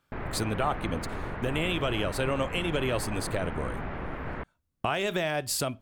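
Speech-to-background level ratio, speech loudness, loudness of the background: 6.5 dB, -30.5 LUFS, -37.0 LUFS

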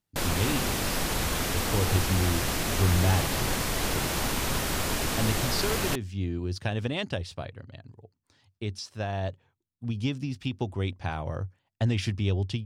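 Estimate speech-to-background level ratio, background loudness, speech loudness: -3.0 dB, -28.5 LUFS, -31.5 LUFS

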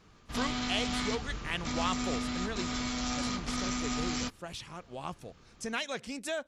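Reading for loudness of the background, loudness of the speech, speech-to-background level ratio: -34.5 LUFS, -38.5 LUFS, -4.0 dB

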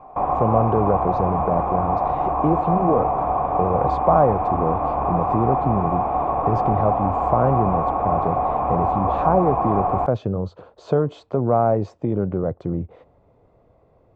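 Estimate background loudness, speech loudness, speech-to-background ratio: -22.0 LUFS, -23.5 LUFS, -1.5 dB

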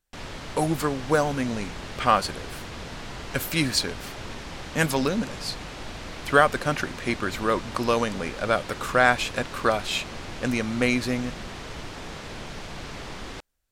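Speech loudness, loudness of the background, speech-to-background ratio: -25.5 LUFS, -37.5 LUFS, 12.0 dB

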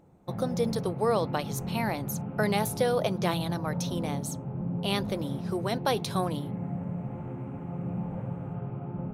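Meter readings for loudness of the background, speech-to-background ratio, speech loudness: -35.0 LUFS, 4.0 dB, -31.0 LUFS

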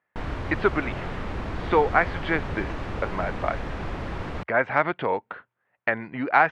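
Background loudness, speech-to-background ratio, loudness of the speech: -33.5 LUFS, 7.5 dB, -26.0 LUFS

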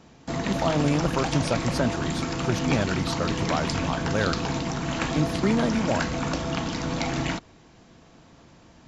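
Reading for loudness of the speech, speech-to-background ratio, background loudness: -28.0 LUFS, 0.0 dB, -28.0 LUFS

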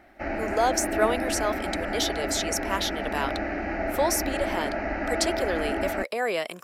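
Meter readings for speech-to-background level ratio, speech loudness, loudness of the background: 1.5 dB, -28.5 LUFS, -30.0 LUFS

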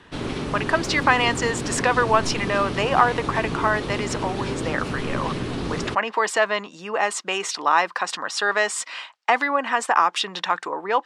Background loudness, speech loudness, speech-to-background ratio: -29.0 LUFS, -23.0 LUFS, 6.0 dB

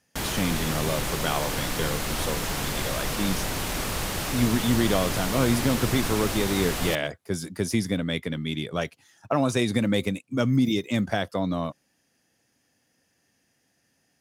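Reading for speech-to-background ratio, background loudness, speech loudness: 1.5 dB, -29.0 LUFS, -27.5 LUFS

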